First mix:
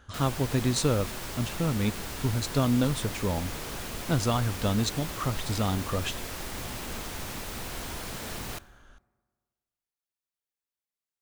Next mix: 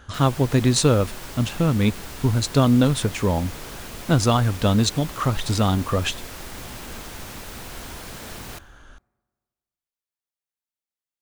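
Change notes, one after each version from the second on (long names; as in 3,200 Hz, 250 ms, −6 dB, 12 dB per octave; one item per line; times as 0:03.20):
speech +8.0 dB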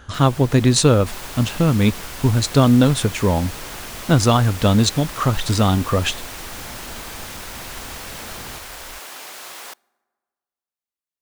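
speech +3.5 dB
second sound: unmuted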